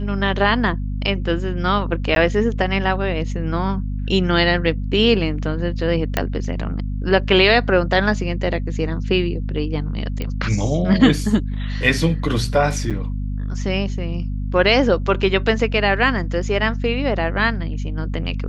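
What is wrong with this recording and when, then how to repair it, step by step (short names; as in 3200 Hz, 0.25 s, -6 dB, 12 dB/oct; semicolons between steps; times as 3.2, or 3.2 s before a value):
hum 50 Hz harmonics 5 -24 dBFS
2.15–2.16 gap 12 ms
6.17 pop -4 dBFS
10.22 pop -13 dBFS
12.9–12.91 gap 7 ms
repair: de-click; de-hum 50 Hz, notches 5; interpolate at 2.15, 12 ms; interpolate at 12.9, 7 ms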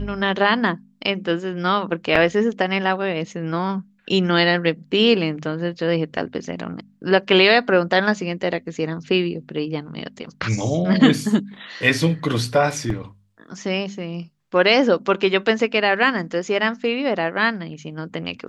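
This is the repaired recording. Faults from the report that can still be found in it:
none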